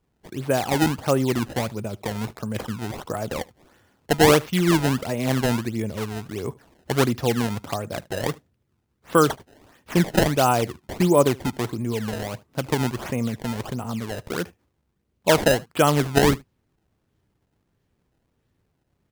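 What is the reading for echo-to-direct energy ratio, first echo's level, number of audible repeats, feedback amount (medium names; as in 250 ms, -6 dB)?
-23.5 dB, -23.5 dB, 1, no regular repeats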